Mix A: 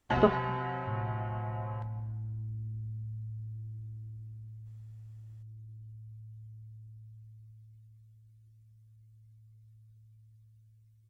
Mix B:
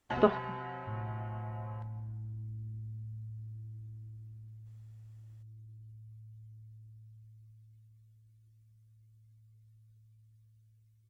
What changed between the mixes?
first sound -5.5 dB; master: add low shelf 170 Hz -5 dB

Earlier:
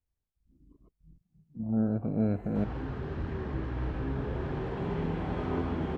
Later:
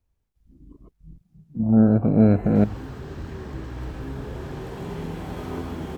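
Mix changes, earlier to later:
speech +12.0 dB; background: remove LPF 2800 Hz 12 dB/oct

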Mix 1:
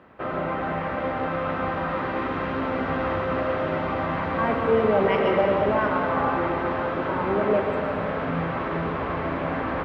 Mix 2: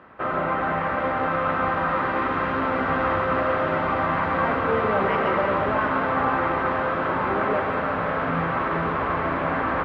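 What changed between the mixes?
speech -6.0 dB; master: add bell 1300 Hz +6.5 dB 1.4 oct

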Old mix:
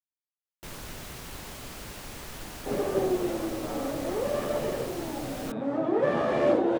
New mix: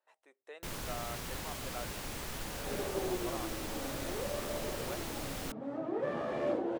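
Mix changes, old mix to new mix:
speech: entry -2.75 s; second sound -10.0 dB

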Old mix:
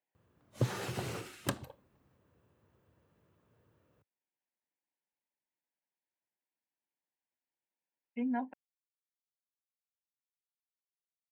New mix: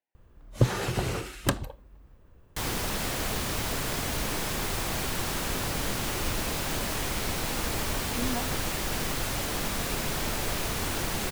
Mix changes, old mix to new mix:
first sound +8.5 dB; second sound: unmuted; master: remove HPF 96 Hz 24 dB/oct

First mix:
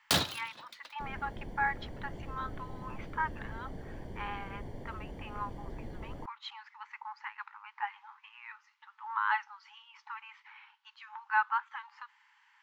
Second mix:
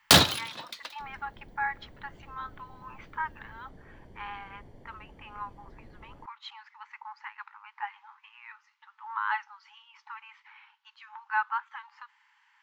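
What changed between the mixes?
first sound +10.5 dB; second sound -8.5 dB

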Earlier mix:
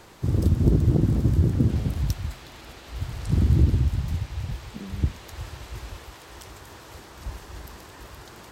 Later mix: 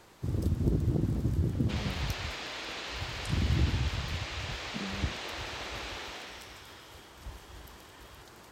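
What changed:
first sound -7.0 dB; second sound +10.5 dB; master: add low shelf 170 Hz -3 dB

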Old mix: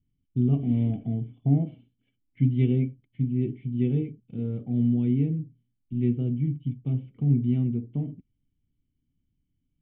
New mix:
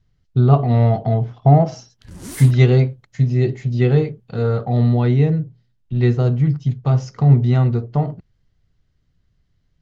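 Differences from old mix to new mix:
background: entry +1.60 s; master: remove vocal tract filter i

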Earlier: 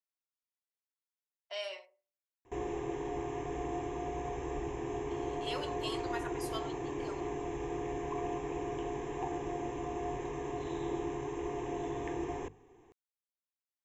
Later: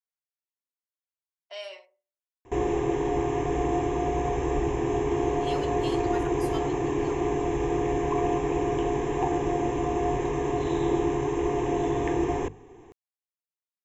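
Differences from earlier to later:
background +9.5 dB; master: add low shelf 480 Hz +3 dB

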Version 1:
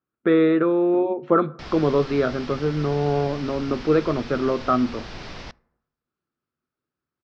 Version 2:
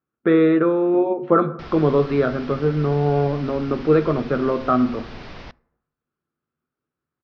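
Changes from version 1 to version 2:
speech: send +10.5 dB; master: add air absorption 140 m

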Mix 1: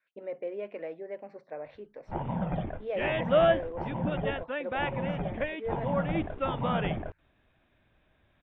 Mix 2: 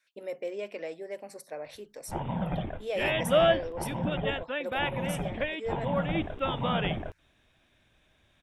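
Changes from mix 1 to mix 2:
speech: remove air absorption 190 m; master: remove LPF 2200 Hz 12 dB/oct

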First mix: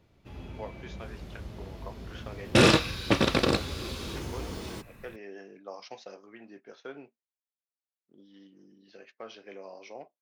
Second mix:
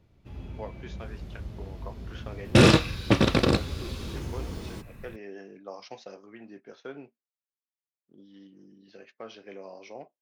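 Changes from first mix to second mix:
first sound -3.5 dB; master: add low shelf 230 Hz +8 dB

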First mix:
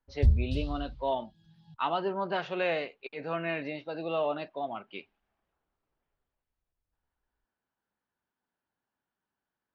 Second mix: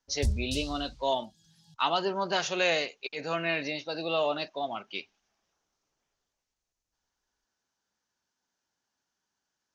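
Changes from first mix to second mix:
background -6.0 dB; master: remove air absorption 460 m

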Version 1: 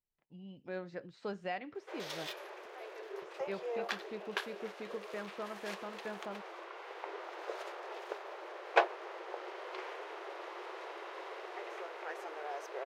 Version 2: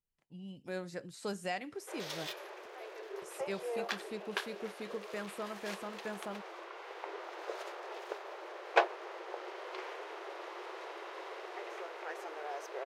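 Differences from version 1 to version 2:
speech: remove air absorption 210 m; master: add tone controls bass +4 dB, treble +3 dB

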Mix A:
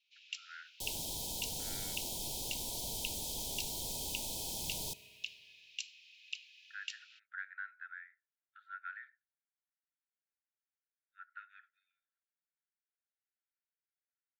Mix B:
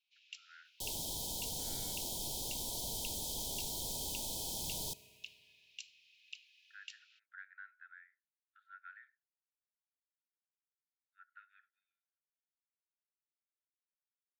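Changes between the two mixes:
speech -8.0 dB; first sound -7.0 dB

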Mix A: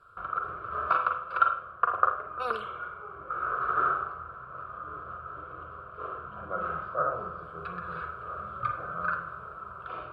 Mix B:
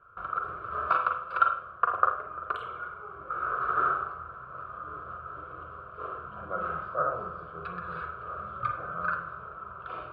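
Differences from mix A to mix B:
speech: muted; second sound: send off

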